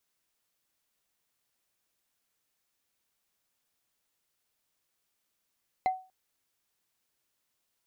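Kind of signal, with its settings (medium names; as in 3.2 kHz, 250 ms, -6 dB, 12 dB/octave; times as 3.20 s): wood hit, length 0.24 s, lowest mode 750 Hz, decay 0.33 s, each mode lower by 11.5 dB, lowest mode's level -20.5 dB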